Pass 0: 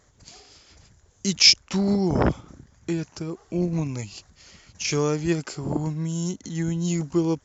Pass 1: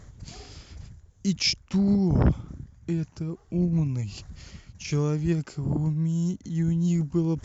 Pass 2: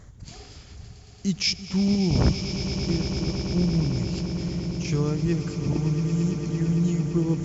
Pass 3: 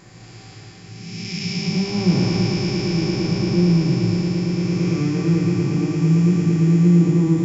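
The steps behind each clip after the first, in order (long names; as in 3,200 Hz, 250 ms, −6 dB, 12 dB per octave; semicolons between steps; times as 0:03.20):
bass and treble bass +13 dB, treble −3 dB; reversed playback; upward compression, threshold −23 dBFS; reversed playback; level −8 dB
echo that builds up and dies away 113 ms, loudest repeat 8, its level −13 dB
spectrum smeared in time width 521 ms; convolution reverb RT60 0.40 s, pre-delay 3 ms, DRR −2.5 dB; level +3.5 dB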